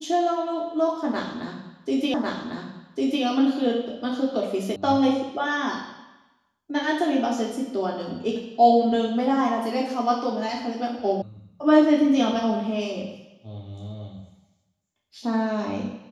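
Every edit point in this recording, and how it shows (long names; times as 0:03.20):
0:02.14: the same again, the last 1.1 s
0:04.76: cut off before it has died away
0:11.22: cut off before it has died away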